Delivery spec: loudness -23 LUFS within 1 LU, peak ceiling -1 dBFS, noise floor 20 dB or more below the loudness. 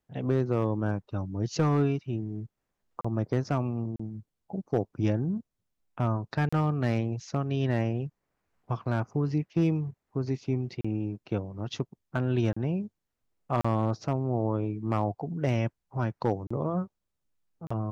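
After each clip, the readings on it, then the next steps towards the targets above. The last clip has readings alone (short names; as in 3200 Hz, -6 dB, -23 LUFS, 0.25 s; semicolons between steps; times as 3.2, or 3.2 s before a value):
clipped 0.3%; flat tops at -16.5 dBFS; dropouts 8; longest dropout 35 ms; loudness -30.5 LUFS; peak -16.5 dBFS; loudness target -23.0 LUFS
-> clip repair -16.5 dBFS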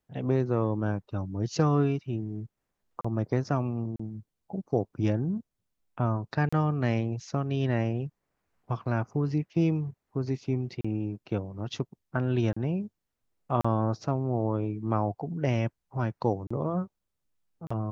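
clipped 0.0%; dropouts 8; longest dropout 35 ms
-> interpolate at 3.01/3.96/6.49/10.81/12.53/13.61/16.47/17.67, 35 ms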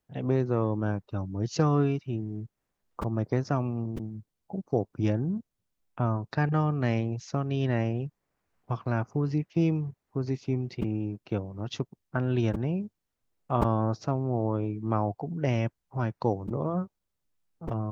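dropouts 0; loudness -30.0 LUFS; peak -11.0 dBFS; loudness target -23.0 LUFS
-> gain +7 dB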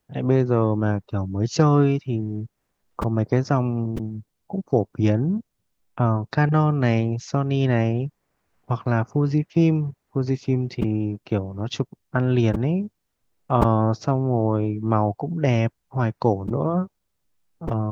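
loudness -23.0 LUFS; peak -4.0 dBFS; noise floor -76 dBFS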